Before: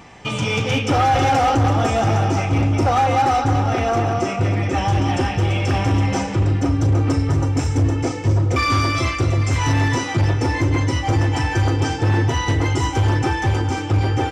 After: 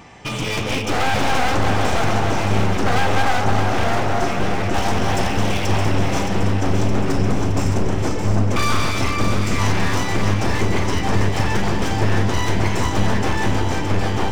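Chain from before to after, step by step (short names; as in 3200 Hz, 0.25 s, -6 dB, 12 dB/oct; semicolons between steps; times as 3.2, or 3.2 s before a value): one-sided fold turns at -22 dBFS; 4.74–5.67 high shelf 4900 Hz +6.5 dB; echo with dull and thin repeats by turns 0.309 s, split 1200 Hz, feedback 80%, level -5 dB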